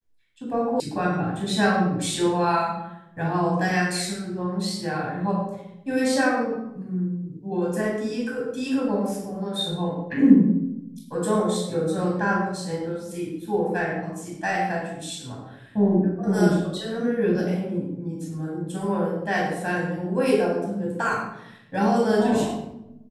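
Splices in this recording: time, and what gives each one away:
0.8 sound cut off

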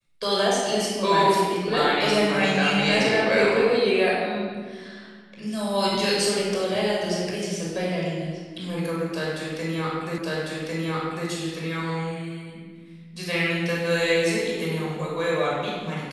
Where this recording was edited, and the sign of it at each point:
10.18 repeat of the last 1.1 s

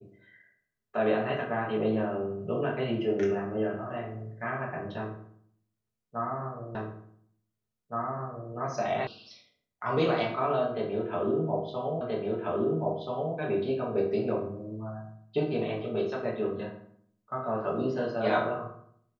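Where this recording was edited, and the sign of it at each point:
6.75 repeat of the last 1.77 s
9.07 sound cut off
12.01 repeat of the last 1.33 s

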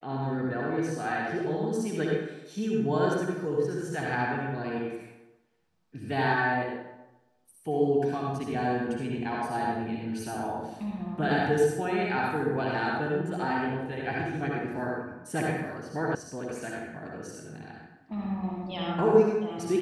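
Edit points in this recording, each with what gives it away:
16.15 sound cut off

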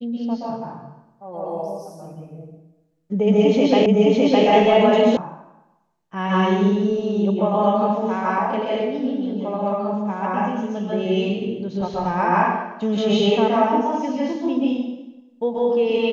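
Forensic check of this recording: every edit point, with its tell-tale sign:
3.86 repeat of the last 0.61 s
5.17 sound cut off

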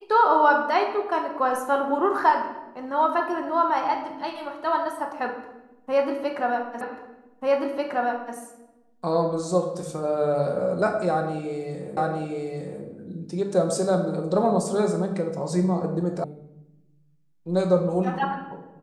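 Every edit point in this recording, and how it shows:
6.81 repeat of the last 1.54 s
11.97 repeat of the last 0.86 s
16.24 sound cut off

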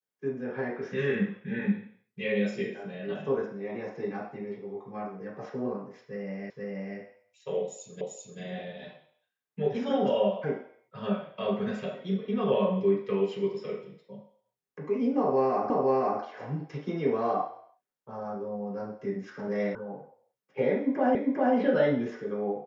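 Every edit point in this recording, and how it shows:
6.5 repeat of the last 0.48 s
8.01 repeat of the last 0.39 s
15.7 repeat of the last 0.51 s
19.75 sound cut off
21.15 repeat of the last 0.4 s

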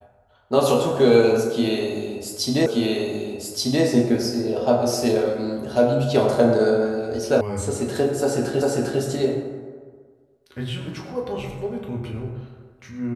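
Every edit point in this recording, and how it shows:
2.66 repeat of the last 1.18 s
7.41 sound cut off
8.62 repeat of the last 0.4 s

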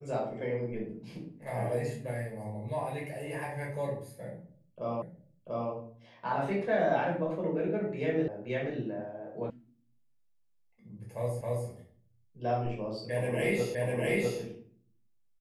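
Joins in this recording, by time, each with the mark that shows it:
5.02 repeat of the last 0.69 s
8.28 sound cut off
9.5 sound cut off
11.41 repeat of the last 0.27 s
13.75 repeat of the last 0.65 s

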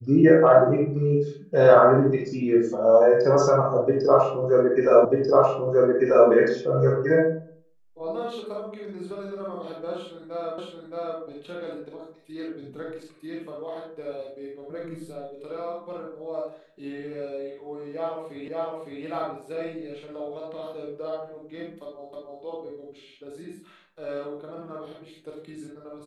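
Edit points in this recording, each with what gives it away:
5.05 repeat of the last 1.24 s
10.58 repeat of the last 0.62 s
18.48 repeat of the last 0.56 s
22.13 repeat of the last 0.3 s

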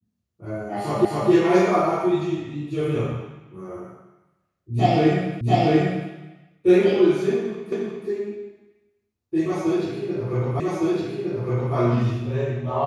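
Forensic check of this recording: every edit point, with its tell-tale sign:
1.05 repeat of the last 0.26 s
5.41 repeat of the last 0.69 s
7.72 repeat of the last 0.36 s
10.6 repeat of the last 1.16 s

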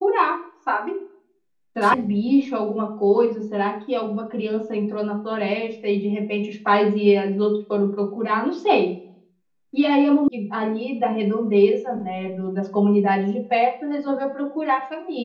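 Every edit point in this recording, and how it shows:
1.94 sound cut off
10.28 sound cut off

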